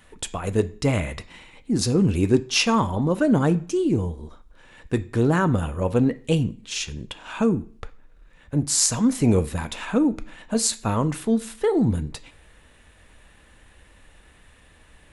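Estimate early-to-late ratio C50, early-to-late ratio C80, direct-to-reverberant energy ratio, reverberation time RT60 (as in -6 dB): 18.0 dB, 22.5 dB, 10.5 dB, 0.45 s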